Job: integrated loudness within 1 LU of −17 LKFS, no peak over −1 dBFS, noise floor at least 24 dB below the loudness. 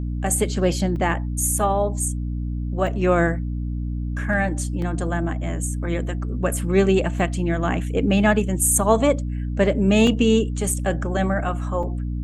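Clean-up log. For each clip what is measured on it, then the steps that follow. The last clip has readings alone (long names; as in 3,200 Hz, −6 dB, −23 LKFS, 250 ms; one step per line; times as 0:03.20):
number of dropouts 6; longest dropout 2.6 ms; mains hum 60 Hz; hum harmonics up to 300 Hz; level of the hum −23 dBFS; integrated loudness −22.0 LKFS; sample peak −3.5 dBFS; target loudness −17.0 LKFS
→ repair the gap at 0:00.96/0:02.87/0:04.82/0:07.19/0:10.07/0:11.83, 2.6 ms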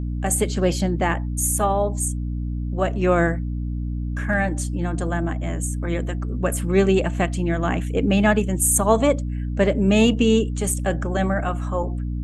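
number of dropouts 0; mains hum 60 Hz; hum harmonics up to 300 Hz; level of the hum −23 dBFS
→ hum removal 60 Hz, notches 5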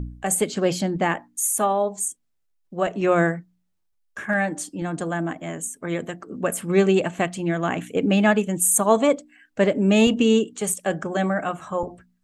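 mains hum none found; integrated loudness −22.5 LKFS; sample peak −4.5 dBFS; target loudness −17.0 LKFS
→ level +5.5 dB
brickwall limiter −1 dBFS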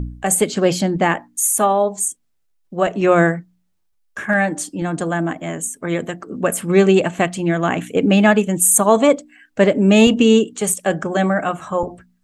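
integrated loudness −17.0 LKFS; sample peak −1.0 dBFS; background noise floor −65 dBFS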